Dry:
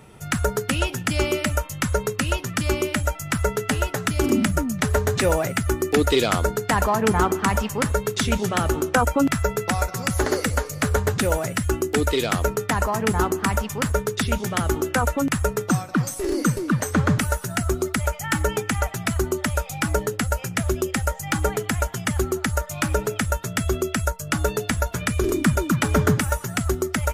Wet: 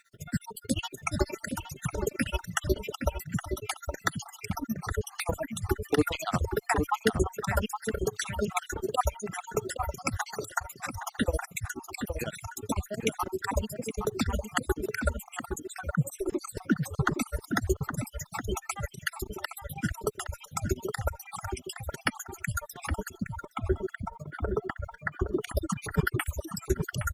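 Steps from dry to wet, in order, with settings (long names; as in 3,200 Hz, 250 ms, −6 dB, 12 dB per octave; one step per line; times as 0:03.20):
time-frequency cells dropped at random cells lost 61%
reverb reduction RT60 1 s
0:23.15–0:25.41: Savitzky-Golay smoothing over 41 samples
harmonic generator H 3 −27 dB, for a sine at −6 dBFS
bit-depth reduction 12 bits, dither none
amplitude tremolo 14 Hz, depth 97%
slap from a distant wall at 140 metres, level −6 dB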